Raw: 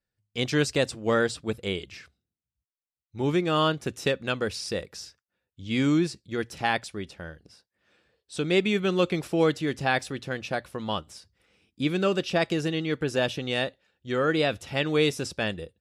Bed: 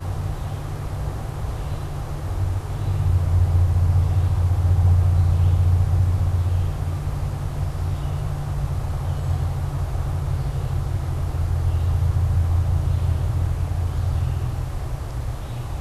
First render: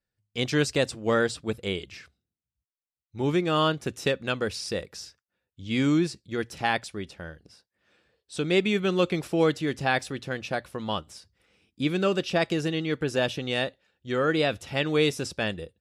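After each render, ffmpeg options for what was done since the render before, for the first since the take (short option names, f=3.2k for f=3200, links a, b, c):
-af anull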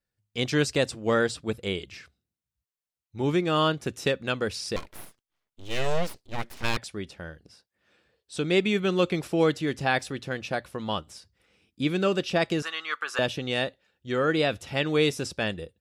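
-filter_complex "[0:a]asettb=1/sr,asplit=3[a][b][c];[a]atrim=end=4.764[d];[b]atrim=start=4.76:end=6.77,asetpts=PTS-STARTPTS,afade=t=in:d=0.004:c=qsin,afade=t=out:st=2.006:d=0.004:c=qsin,aeval=exprs='abs(val(0))':c=same[e];[c]atrim=start=6.766[f];[d][e]acrossfade=d=0.004:c1=hsin:c2=qsin[g];[g][f]acrossfade=d=0.004:c1=qsin:c2=hsin,asettb=1/sr,asplit=3[h][i][j];[h]atrim=end=12.624[k];[i]atrim=start=12.62:end=13.19,asetpts=PTS-STARTPTS,afade=t=in:d=0.004:c=qsin,afade=t=out:st=0.566:d=0.004:c=qsin,highpass=f=1.2k:t=q:w=5.9[l];[j]atrim=start=13.186[m];[k][l]acrossfade=d=0.004:c1=hsin:c2=qsin[n];[n][m]acrossfade=d=0.004:c1=qsin:c2=hsin"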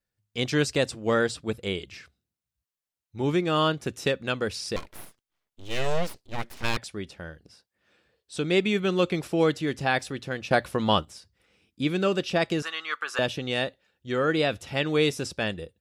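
-filter_complex "[0:a]asplit=3[a][b][c];[a]atrim=end=10.512[d];[b]atrim=start=10.508:end=11.052,asetpts=PTS-STARTPTS,volume=7.5dB[e];[c]atrim=start=11.048[f];[d][e]acrossfade=d=0.004:c1=hsin:c2=hsin[g];[g][f]acrossfade=d=0.004:c1=hsin:c2=hsin"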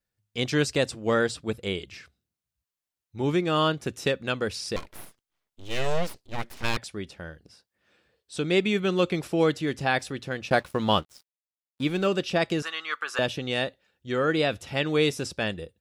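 -filter_complex "[0:a]asettb=1/sr,asplit=3[a][b][c];[a]atrim=end=10.504[d];[b]atrim=start=10.5:end=12.07,asetpts=PTS-STARTPTS,afade=t=in:d=0.004:c=qsin,afade=t=out:st=1.566:d=0.004:c=qsin,aeval=exprs='sgn(val(0))*max(abs(val(0))-0.00473,0)':c=same[e];[c]atrim=start=12.066[f];[d][e]acrossfade=d=0.004:c1=hsin:c2=qsin[g];[g][f]acrossfade=d=0.004:c1=qsin:c2=hsin"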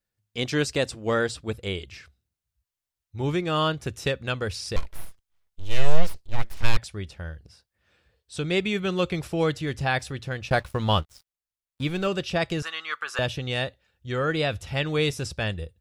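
-af "asubboost=boost=6.5:cutoff=93"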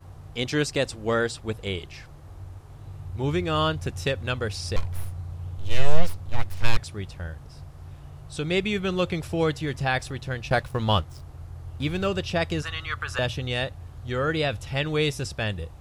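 -filter_complex "[1:a]volume=-17.5dB[a];[0:a][a]amix=inputs=2:normalize=0"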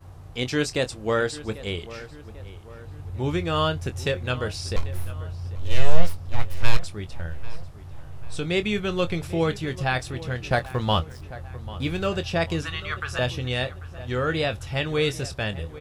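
-filter_complex "[0:a]asplit=2[a][b];[b]adelay=24,volume=-11dB[c];[a][c]amix=inputs=2:normalize=0,asplit=2[d][e];[e]adelay=793,lowpass=f=3.1k:p=1,volume=-16.5dB,asplit=2[f][g];[g]adelay=793,lowpass=f=3.1k:p=1,volume=0.5,asplit=2[h][i];[i]adelay=793,lowpass=f=3.1k:p=1,volume=0.5,asplit=2[j][k];[k]adelay=793,lowpass=f=3.1k:p=1,volume=0.5[l];[d][f][h][j][l]amix=inputs=5:normalize=0"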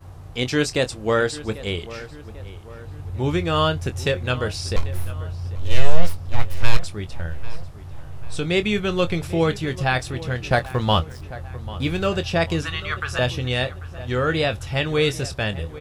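-af "volume=3.5dB,alimiter=limit=-1dB:level=0:latency=1"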